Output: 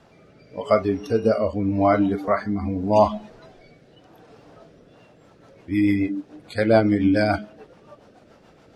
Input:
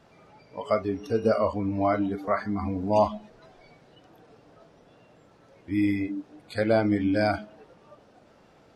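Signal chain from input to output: rotary cabinet horn 0.85 Hz, later 7 Hz, at 4.64 s; endings held to a fixed fall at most 560 dB/s; trim +7 dB

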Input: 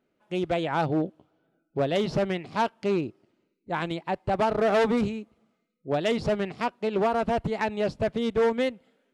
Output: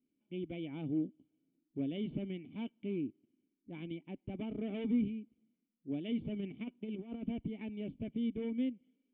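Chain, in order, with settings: 6.36–7.29 s: compressor with a negative ratio -27 dBFS, ratio -0.5; cascade formant filter i; trim -1.5 dB

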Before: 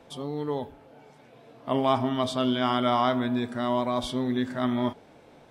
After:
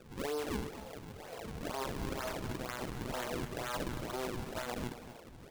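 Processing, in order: self-modulated delay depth 0.99 ms; recorder AGC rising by 8.1 dB/s; high-pass 420 Hz 24 dB/octave; treble shelf 5.5 kHz -7.5 dB; peak limiter -28.5 dBFS, peak gain reduction 19.5 dB; decimation with a swept rate 41×, swing 160% 2.1 Hz; delay 238 ms -12 dB

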